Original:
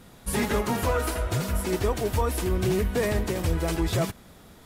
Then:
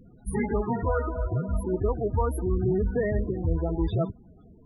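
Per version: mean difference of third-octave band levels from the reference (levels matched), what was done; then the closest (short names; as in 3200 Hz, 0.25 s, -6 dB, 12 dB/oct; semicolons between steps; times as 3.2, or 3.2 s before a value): 16.5 dB: notch 560 Hz, Q 12; loudest bins only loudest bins 16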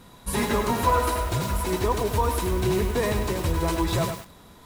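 2.5 dB: small resonant body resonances 1000/3900 Hz, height 12 dB, ringing for 45 ms; lo-fi delay 0.1 s, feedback 35%, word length 6-bit, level -6 dB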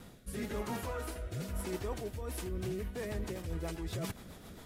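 3.5 dB: reverse; compressor 6:1, threshold -36 dBFS, peak gain reduction 15 dB; reverse; rotary speaker horn 1 Hz, later 7.5 Hz, at 2.08; gain +1.5 dB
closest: second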